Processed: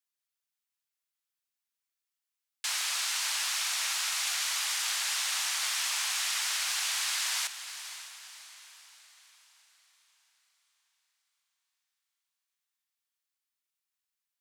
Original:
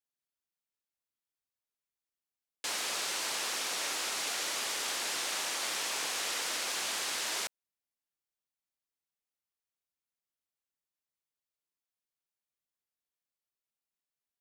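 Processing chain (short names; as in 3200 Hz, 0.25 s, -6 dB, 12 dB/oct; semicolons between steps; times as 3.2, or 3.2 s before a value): Bessel high-pass 1300 Hz, order 8; diffused feedback echo 0.548 s, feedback 46%, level -11.5 dB; gain +4 dB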